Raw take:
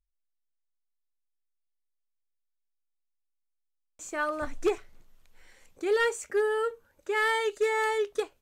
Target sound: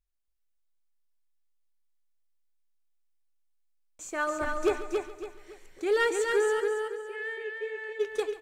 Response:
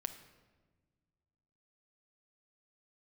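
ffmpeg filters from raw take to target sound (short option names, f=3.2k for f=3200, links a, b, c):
-filter_complex "[0:a]asplit=3[a][b][c];[a]afade=t=out:st=6.59:d=0.02[d];[b]asplit=3[e][f][g];[e]bandpass=f=530:t=q:w=8,volume=0dB[h];[f]bandpass=f=1.84k:t=q:w=8,volume=-6dB[i];[g]bandpass=f=2.48k:t=q:w=8,volume=-9dB[j];[h][i][j]amix=inputs=3:normalize=0,afade=t=in:st=6.59:d=0.02,afade=t=out:st=7.99:d=0.02[k];[c]afade=t=in:st=7.99:d=0.02[l];[d][k][l]amix=inputs=3:normalize=0,aecho=1:1:279|558|837|1116:0.631|0.208|0.0687|0.0227,asplit=2[m][n];[1:a]atrim=start_sample=2205,adelay=140[o];[n][o]afir=irnorm=-1:irlink=0,volume=-14dB[p];[m][p]amix=inputs=2:normalize=0"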